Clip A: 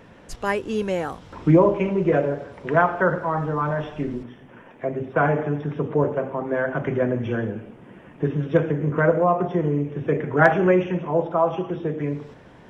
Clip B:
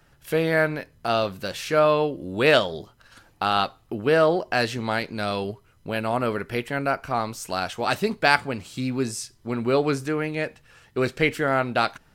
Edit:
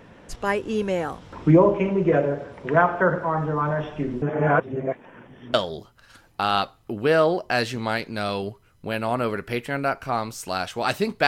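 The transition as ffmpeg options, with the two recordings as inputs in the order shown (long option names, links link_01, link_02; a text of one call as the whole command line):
ffmpeg -i cue0.wav -i cue1.wav -filter_complex "[0:a]apad=whole_dur=11.27,atrim=end=11.27,asplit=2[link_01][link_02];[link_01]atrim=end=4.222[link_03];[link_02]atrim=start=4.218:end=5.542,asetpts=PTS-STARTPTS,areverse[link_04];[1:a]atrim=start=2.558:end=8.29[link_05];[link_03][link_04]acrossfade=duration=0.004:curve1=hsin:curve2=hsin[link_06];[link_06][link_05]acrossfade=duration=0.004:curve1=hsin:curve2=hsin" out.wav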